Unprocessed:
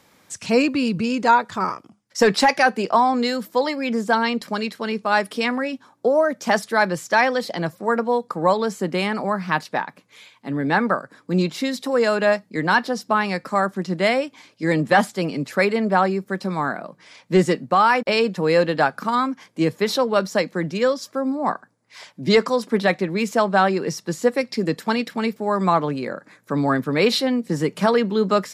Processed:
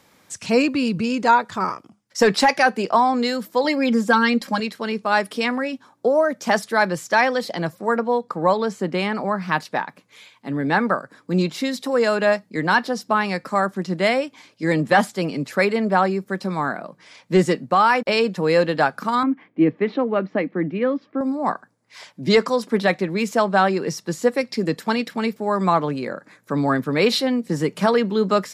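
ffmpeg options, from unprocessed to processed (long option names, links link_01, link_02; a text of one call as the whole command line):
ffmpeg -i in.wav -filter_complex "[0:a]asettb=1/sr,asplit=3[link_01][link_02][link_03];[link_01]atrim=end=3.644[link_04];[link_02]atrim=start=3.64:end=4.6,asetpts=PTS-STARTPTS,afade=type=in:duration=0.004:curve=qsin,afade=type=out:start_time=0.956:duration=0.004:curve=qsin,aecho=1:1:3.7:0.95,atrim=end_sample=42336[link_05];[link_03]atrim=start=4.596[link_06];[link_04][link_05]acrossfade=duration=0.004:curve1=hsin:curve2=qsin[link_07];[link_07][link_06]acrossfade=duration=0.004:curve1=qsin:curve2=hsin,asettb=1/sr,asplit=3[link_08][link_09][link_10];[link_08]atrim=end=7.974[link_11];[link_09]atrim=start=7.97:end=9.42,asetpts=PTS-STARTPTS,afade=type=in:duration=0.004:curve=qsin,afade=type=out:start_time=1.446:duration=0.004:curve=qsin,highshelf=frequency=8600:gain=-12[link_12];[link_10]atrim=start=9.416[link_13];[link_11][link_12]acrossfade=duration=0.004:curve1=hsin:curve2=qsin[link_14];[link_14][link_13]acrossfade=duration=0.004:curve1=qsin:curve2=hsin,asettb=1/sr,asplit=3[link_15][link_16][link_17];[link_15]atrim=end=19.234[link_18];[link_16]atrim=start=19.23:end=21.21,asetpts=PTS-STARTPTS,afade=type=in:duration=0.004:curve=qsin,afade=type=out:start_time=1.976:duration=0.004:curve=qsin,highpass=130,equalizer=frequency=290:width_type=q:width=4:gain=9,equalizer=frequency=550:width_type=q:width=4:gain=-4,equalizer=frequency=970:width_type=q:width=4:gain=-6,equalizer=frequency=1500:width_type=q:width=4:gain=-6,lowpass=frequency=2400:width=0.5412,lowpass=frequency=2400:width=1.3066[link_19];[link_17]atrim=start=21.206[link_20];[link_18][link_19]acrossfade=duration=0.004:curve1=hsin:curve2=qsin[link_21];[link_21][link_20]acrossfade=duration=0.004:curve1=qsin:curve2=hsin" out.wav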